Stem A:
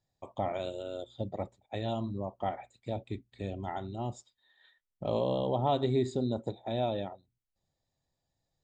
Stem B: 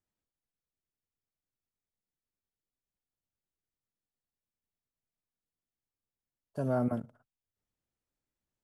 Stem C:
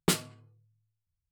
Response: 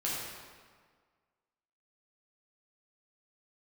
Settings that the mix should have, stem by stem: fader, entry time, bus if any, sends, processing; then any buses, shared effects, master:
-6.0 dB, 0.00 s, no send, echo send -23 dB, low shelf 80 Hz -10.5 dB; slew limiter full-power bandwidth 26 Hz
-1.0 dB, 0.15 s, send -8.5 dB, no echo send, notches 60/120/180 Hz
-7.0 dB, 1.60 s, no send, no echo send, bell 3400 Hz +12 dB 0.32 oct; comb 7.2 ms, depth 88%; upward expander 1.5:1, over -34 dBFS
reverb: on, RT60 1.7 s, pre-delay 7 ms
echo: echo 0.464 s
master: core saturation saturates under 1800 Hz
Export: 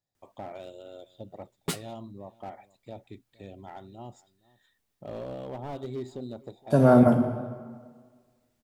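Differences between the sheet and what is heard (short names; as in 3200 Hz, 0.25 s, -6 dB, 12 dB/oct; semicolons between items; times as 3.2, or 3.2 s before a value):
stem B -1.0 dB -> +10.5 dB; stem C: missing bell 3400 Hz +12 dB 0.32 oct; master: missing core saturation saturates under 1800 Hz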